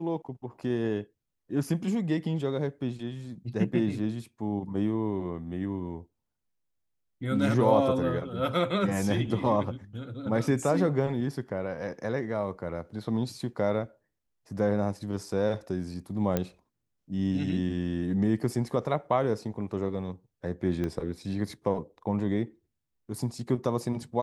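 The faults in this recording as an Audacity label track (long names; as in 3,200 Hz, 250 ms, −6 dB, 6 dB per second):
16.370000	16.370000	click −13 dBFS
20.840000	20.840000	click −21 dBFS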